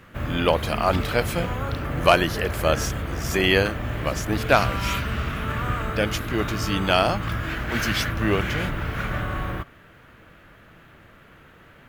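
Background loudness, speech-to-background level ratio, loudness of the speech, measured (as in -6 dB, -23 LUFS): -28.5 LUFS, 4.0 dB, -24.5 LUFS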